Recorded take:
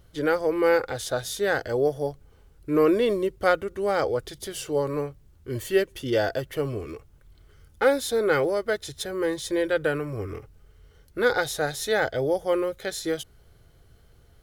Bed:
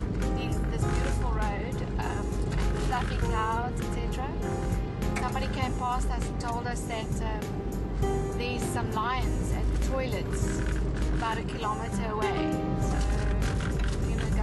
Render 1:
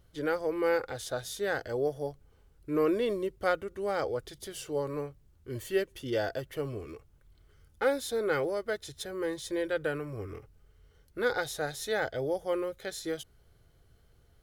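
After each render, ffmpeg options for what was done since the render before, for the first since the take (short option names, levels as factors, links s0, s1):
-af "volume=0.447"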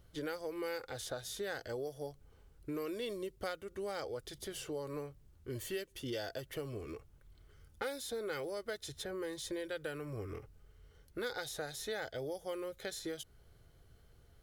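-filter_complex "[0:a]acrossover=split=3000[s0][s1];[s0]acompressor=threshold=0.0126:ratio=6[s2];[s1]alimiter=level_in=3.55:limit=0.0631:level=0:latency=1:release=295,volume=0.282[s3];[s2][s3]amix=inputs=2:normalize=0"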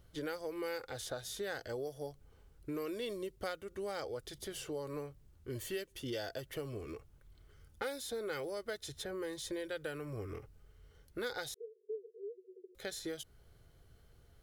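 -filter_complex "[0:a]asettb=1/sr,asplit=3[s0][s1][s2];[s0]atrim=end=11.544[s3];[s1]atrim=start=11.54:end=12.75,asetpts=PTS-STARTPTS,afade=t=in:d=0.004:c=qsin,afade=t=out:st=1.206:d=0.004:c=qsin,asuperpass=centerf=420:order=20:qfactor=3.8[s4];[s2]atrim=start=12.746[s5];[s3][s4]acrossfade=d=0.004:c1=hsin:c2=qsin[s6];[s6][s5]acrossfade=d=0.004:c1=qsin:c2=hsin"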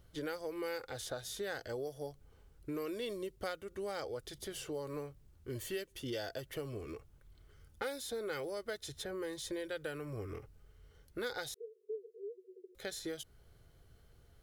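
-filter_complex "[0:a]asettb=1/sr,asplit=3[s0][s1][s2];[s0]atrim=end=4.744[s3];[s1]atrim=start=4.74:end=5.54,asetpts=PTS-STARTPTS,afade=t=in:d=0.004:c=qsin,afade=t=out:st=0.796:d=0.004:c=qsin,acrusher=bits=9:mode=log:mix=0:aa=0.000001[s4];[s2]atrim=start=5.536[s5];[s3][s4]acrossfade=d=0.004:c1=hsin:c2=qsin[s6];[s6][s5]acrossfade=d=0.004:c1=qsin:c2=hsin"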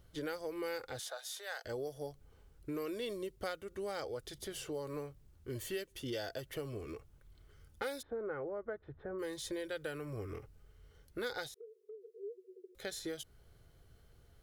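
-filter_complex "[0:a]asettb=1/sr,asplit=3[s0][s1][s2];[s0]atrim=end=0.994[s3];[s1]atrim=start=0.99:end=1.65,asetpts=PTS-STARTPTS,afade=t=in:d=0.004:c=qsin,afade=t=out:st=0.656:d=0.004:c=qsin,highpass=f=620:w=0.5412,highpass=f=620:w=1.3066[s4];[s2]atrim=start=1.646[s5];[s3][s4]acrossfade=d=0.004:c1=hsin:c2=qsin[s6];[s6][s5]acrossfade=d=0.004:c1=qsin:c2=hsin,asplit=3[s7][s8][s9];[s7]afade=t=out:st=8.01:d=0.02[s10];[s8]lowpass=f=1500:w=0.5412,lowpass=f=1500:w=1.3066,afade=t=in:st=8.01:d=0.02,afade=t=out:st=9.18:d=0.02[s11];[s9]afade=t=in:st=9.18:d=0.02[s12];[s10][s11][s12]amix=inputs=3:normalize=0,asettb=1/sr,asplit=3[s13][s14][s15];[s13]atrim=end=11.464[s16];[s14]atrim=start=11.46:end=12.2,asetpts=PTS-STARTPTS,afade=t=in:d=0.004:c=qsin,afade=t=out:st=0.736:d=0.004:c=qsin,acompressor=threshold=0.00447:ratio=6:attack=3.2:release=140:knee=1:detection=peak[s17];[s15]atrim=start=12.196[s18];[s16][s17]acrossfade=d=0.004:c1=hsin:c2=qsin[s19];[s19][s18]acrossfade=d=0.004:c1=qsin:c2=hsin"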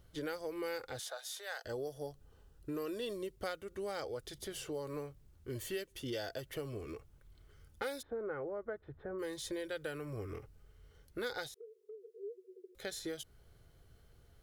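-filter_complex "[0:a]asettb=1/sr,asplit=3[s0][s1][s2];[s0]atrim=end=1.594[s3];[s1]atrim=start=1.59:end=3.15,asetpts=PTS-STARTPTS,afade=t=in:d=0.004:c=qsin,afade=t=out:st=1.556:d=0.004:c=qsin,asuperstop=centerf=2200:order=4:qfactor=7.5[s4];[s2]atrim=start=3.146[s5];[s3][s4]acrossfade=d=0.004:c1=hsin:c2=qsin[s6];[s6][s5]acrossfade=d=0.004:c1=qsin:c2=hsin"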